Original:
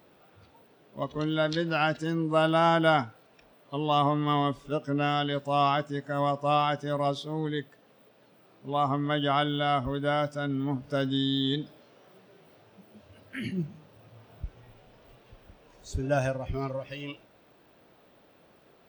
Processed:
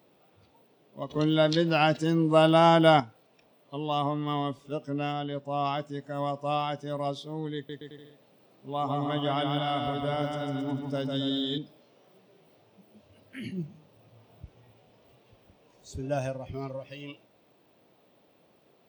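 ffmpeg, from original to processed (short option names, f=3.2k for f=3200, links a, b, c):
-filter_complex "[0:a]asplit=3[a][b][c];[a]afade=t=out:st=5.11:d=0.02[d];[b]highshelf=f=2.5k:g=-10,afade=t=in:st=5.11:d=0.02,afade=t=out:st=5.64:d=0.02[e];[c]afade=t=in:st=5.64:d=0.02[f];[d][e][f]amix=inputs=3:normalize=0,asettb=1/sr,asplit=3[g][h][i];[g]atrim=end=7.544[j];[h]atrim=start=7.54:end=11.58,asetpts=PTS-STARTPTS,afade=t=in:d=0.004:c=qsin,afade=t=out:st=4.036:d=0.004:c=qsin,aecho=1:1:150|270|366|442.8|504.2|553.4:0.631|0.398|0.251|0.158|0.1|0.0631,atrim=end_sample=178164[k];[i]atrim=start=11.576[l];[j][k]acrossfade=d=0.004:c1=hsin:c2=qsin[m];[m][l]acrossfade=d=0.004:c1=qsin:c2=hsin,asplit=3[n][o][p];[n]atrim=end=1.102[q];[o]atrim=start=1.098:end=3.002,asetpts=PTS-STARTPTS,volume=7.5dB[r];[p]atrim=start=2.998[s];[q][r]acrossfade=d=0.004:c1=hsin:c2=hsin[t];[t][s]acrossfade=d=0.004:c1=hsin:c2=hsin,highpass=90,equalizer=f=1.5k:w=1.9:g=-6.5,volume=-3dB"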